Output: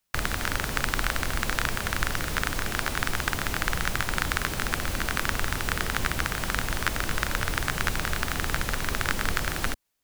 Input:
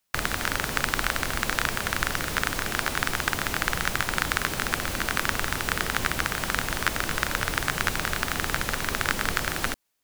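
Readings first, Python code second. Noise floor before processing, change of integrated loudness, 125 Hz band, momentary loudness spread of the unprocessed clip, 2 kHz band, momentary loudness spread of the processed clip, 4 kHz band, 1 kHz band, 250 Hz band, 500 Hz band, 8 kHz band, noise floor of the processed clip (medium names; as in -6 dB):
-33 dBFS, -1.5 dB, +2.0 dB, 2 LU, -2.0 dB, 2 LU, -2.0 dB, -2.0 dB, -0.5 dB, -1.5 dB, -2.0 dB, -34 dBFS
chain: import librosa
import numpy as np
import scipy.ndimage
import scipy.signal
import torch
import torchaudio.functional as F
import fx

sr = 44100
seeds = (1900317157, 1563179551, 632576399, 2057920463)

y = fx.low_shelf(x, sr, hz=110.0, db=7.5)
y = y * librosa.db_to_amplitude(-2.0)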